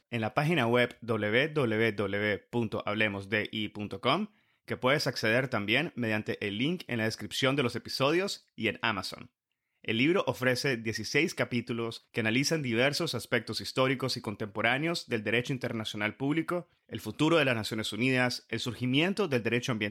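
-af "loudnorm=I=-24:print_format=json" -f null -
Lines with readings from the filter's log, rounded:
"input_i" : "-29.6",
"input_tp" : "-11.8",
"input_lra" : "2.2",
"input_thresh" : "-39.8",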